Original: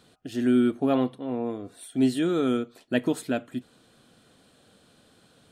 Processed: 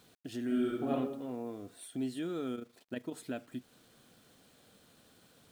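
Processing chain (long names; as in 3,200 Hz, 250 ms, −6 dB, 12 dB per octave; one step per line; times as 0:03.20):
downward compressor 2 to 1, threshold −35 dBFS, peak gain reduction 10 dB
0:00.45–0:00.91: thrown reverb, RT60 0.9 s, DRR −5 dB
bit-depth reduction 10 bits, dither none
0:02.55–0:03.13: amplitude modulation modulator 26 Hz, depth 45%
level −5 dB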